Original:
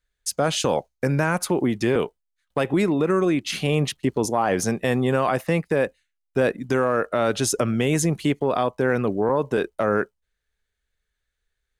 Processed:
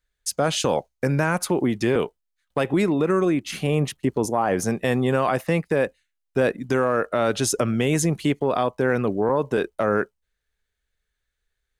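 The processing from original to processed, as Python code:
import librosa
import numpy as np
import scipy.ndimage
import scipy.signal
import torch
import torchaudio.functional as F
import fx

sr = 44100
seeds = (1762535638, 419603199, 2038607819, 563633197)

y = fx.dynamic_eq(x, sr, hz=3900.0, q=0.84, threshold_db=-41.0, ratio=4.0, max_db=-6, at=(3.27, 4.71))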